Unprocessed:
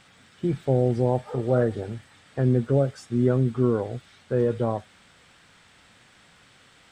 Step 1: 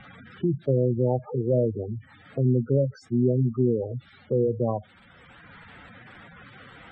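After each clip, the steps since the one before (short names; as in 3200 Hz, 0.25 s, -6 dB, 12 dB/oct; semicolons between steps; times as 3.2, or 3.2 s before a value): spectral gate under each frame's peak -10 dB strong; three-band squash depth 40%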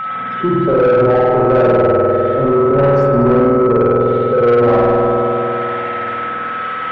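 spring tank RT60 3.1 s, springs 50 ms, chirp 30 ms, DRR -7.5 dB; overdrive pedal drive 24 dB, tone 1600 Hz, clips at -4 dBFS; whine 1300 Hz -20 dBFS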